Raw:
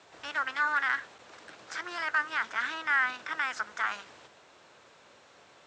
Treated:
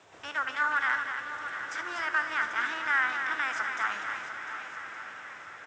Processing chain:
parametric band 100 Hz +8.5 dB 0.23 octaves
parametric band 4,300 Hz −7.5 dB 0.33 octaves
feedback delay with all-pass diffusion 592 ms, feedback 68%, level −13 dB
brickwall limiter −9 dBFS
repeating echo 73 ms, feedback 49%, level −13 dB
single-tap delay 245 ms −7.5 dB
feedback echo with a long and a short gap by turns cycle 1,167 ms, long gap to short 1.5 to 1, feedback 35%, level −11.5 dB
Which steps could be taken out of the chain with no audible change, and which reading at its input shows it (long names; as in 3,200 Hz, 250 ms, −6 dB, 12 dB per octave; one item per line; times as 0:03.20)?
brickwall limiter −9 dBFS: peak of its input −16.5 dBFS